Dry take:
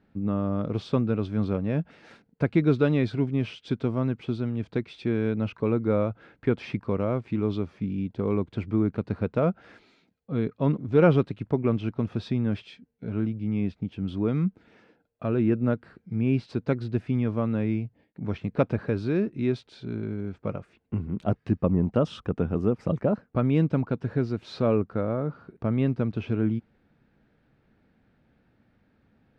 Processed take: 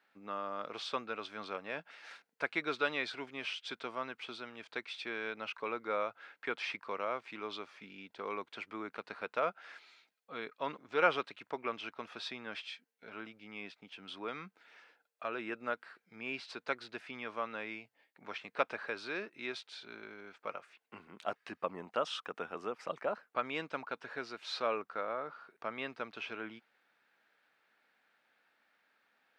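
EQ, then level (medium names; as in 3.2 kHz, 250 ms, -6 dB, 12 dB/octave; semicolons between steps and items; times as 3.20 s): high-pass 1.1 kHz 12 dB/octave; +2.5 dB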